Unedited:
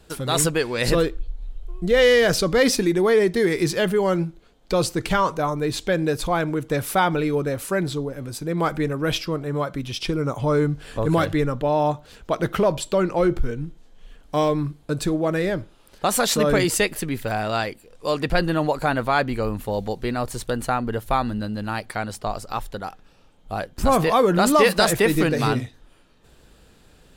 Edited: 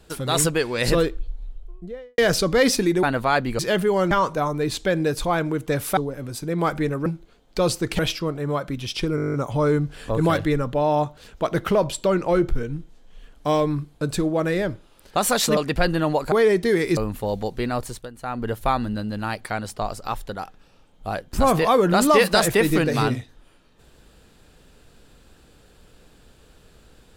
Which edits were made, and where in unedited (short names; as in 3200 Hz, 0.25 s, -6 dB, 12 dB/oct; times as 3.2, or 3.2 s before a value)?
1.23–2.18 studio fade out
3.03–3.68 swap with 18.86–19.42
4.2–5.13 move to 9.05
6.99–7.96 cut
10.22 stutter 0.02 s, 10 plays
16.45–18.11 cut
20.25–20.93 dip -15.5 dB, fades 0.30 s